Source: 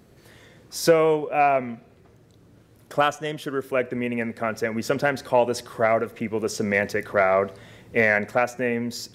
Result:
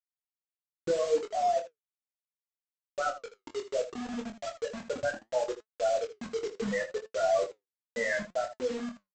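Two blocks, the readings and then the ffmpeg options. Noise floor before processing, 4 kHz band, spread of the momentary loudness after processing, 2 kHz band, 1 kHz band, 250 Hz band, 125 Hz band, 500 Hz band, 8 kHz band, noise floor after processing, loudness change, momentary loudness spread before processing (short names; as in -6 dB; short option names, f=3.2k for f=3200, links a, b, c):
-55 dBFS, -8.5 dB, 11 LU, -12.5 dB, -9.5 dB, -12.0 dB, -17.0 dB, -8.0 dB, -8.5 dB, under -85 dBFS, -9.0 dB, 9 LU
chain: -filter_complex "[0:a]lowpass=f=5.7k:w=0.5412,lowpass=f=5.7k:w=1.3066,bandreject=f=910:w=12,afftfilt=real='re*gte(hypot(re,im),0.398)':imag='im*gte(hypot(re,im),0.398)':win_size=1024:overlap=0.75,asubboost=boost=9:cutoff=84,alimiter=limit=-18.5dB:level=0:latency=1:release=18,aresample=16000,acrusher=bits=5:mix=0:aa=0.000001,aresample=44100,flanger=delay=4.5:depth=6.6:regen=69:speed=0.71:shape=sinusoidal,asplit=2[a][b];[b]aecho=0:1:24|79:0.501|0.237[c];[a][c]amix=inputs=2:normalize=0,adynamicequalizer=threshold=0.00501:dfrequency=1800:dqfactor=0.7:tfrequency=1800:tqfactor=0.7:attack=5:release=100:ratio=0.375:range=2.5:mode=cutabove:tftype=highshelf"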